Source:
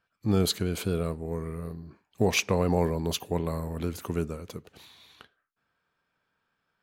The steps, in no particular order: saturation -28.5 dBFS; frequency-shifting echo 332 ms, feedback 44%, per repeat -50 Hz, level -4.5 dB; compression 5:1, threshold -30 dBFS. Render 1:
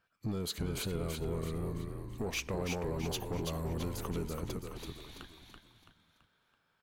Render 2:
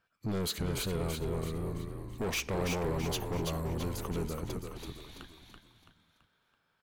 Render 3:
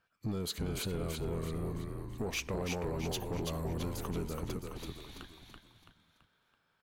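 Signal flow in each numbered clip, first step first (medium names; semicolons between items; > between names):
compression > saturation > frequency-shifting echo; saturation > compression > frequency-shifting echo; compression > frequency-shifting echo > saturation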